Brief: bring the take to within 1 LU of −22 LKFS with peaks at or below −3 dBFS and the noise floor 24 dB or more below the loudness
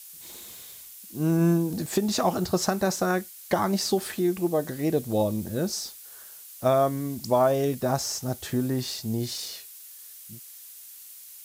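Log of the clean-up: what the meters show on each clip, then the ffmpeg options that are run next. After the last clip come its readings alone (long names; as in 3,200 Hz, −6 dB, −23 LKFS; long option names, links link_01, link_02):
background noise floor −46 dBFS; target noise floor −51 dBFS; integrated loudness −26.5 LKFS; sample peak −10.5 dBFS; target loudness −22.0 LKFS
→ -af "afftdn=noise_reduction=6:noise_floor=-46"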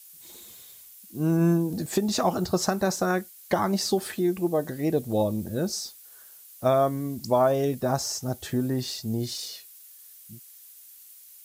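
background noise floor −50 dBFS; target noise floor −51 dBFS
→ -af "afftdn=noise_reduction=6:noise_floor=-50"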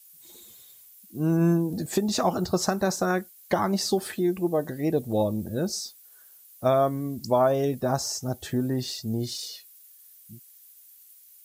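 background noise floor −53 dBFS; integrated loudness −26.5 LKFS; sample peak −11.0 dBFS; target loudness −22.0 LKFS
→ -af "volume=4.5dB"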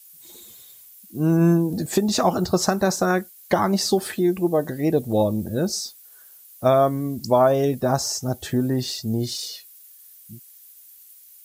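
integrated loudness −22.0 LKFS; sample peak −6.5 dBFS; background noise floor −49 dBFS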